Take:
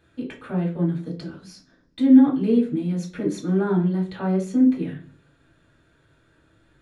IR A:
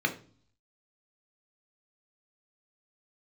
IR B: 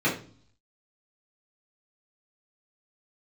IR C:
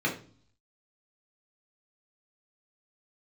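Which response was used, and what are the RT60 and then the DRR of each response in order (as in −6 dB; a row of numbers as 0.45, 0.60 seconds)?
C; 0.45, 0.45, 0.45 seconds; 4.0, −8.5, −3.0 decibels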